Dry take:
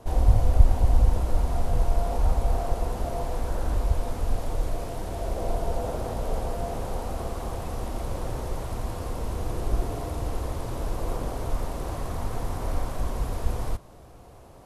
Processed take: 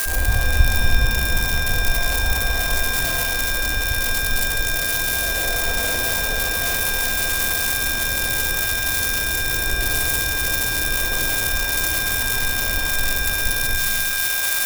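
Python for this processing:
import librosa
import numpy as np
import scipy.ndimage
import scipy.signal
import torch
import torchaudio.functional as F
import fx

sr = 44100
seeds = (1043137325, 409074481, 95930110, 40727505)

y = x + 0.5 * 10.0 ** (-10.0 / 20.0) * np.diff(np.sign(x), prepend=np.sign(x[:1]))
y = y + 10.0 ** (-26.0 / 20.0) * np.sin(2.0 * np.pi * 1600.0 * np.arange(len(y)) / sr)
y = fx.rev_shimmer(y, sr, seeds[0], rt60_s=1.2, semitones=7, shimmer_db=-2, drr_db=6.0)
y = F.gain(torch.from_numpy(y), -1.0).numpy()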